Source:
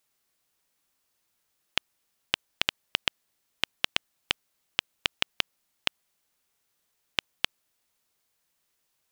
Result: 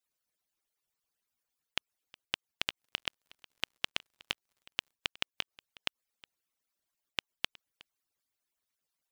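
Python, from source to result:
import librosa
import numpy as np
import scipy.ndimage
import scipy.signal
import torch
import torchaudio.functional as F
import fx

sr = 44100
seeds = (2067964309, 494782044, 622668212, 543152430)

y = fx.hpss_only(x, sr, part='percussive')
y = y + 10.0 ** (-22.5 / 20.0) * np.pad(y, (int(365 * sr / 1000.0), 0))[:len(y)]
y = fx.dmg_crackle(y, sr, seeds[0], per_s=72.0, level_db=-49.0, at=(2.81, 4.92), fade=0.02)
y = y * librosa.db_to_amplitude(-7.0)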